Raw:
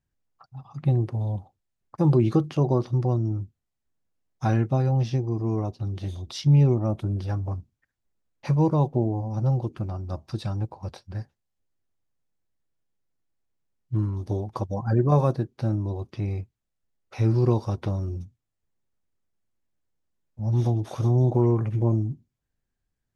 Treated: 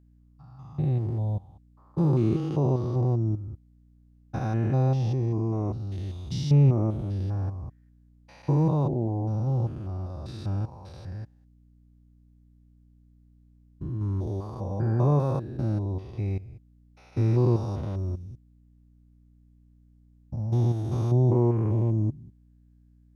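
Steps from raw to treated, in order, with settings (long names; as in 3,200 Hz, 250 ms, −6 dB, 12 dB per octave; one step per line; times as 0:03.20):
spectrum averaged block by block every 200 ms
mains hum 60 Hz, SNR 30 dB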